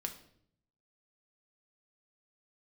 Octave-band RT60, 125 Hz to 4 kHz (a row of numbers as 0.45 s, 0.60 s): 1.1 s, 0.90 s, 0.75 s, 0.55 s, 0.55 s, 0.55 s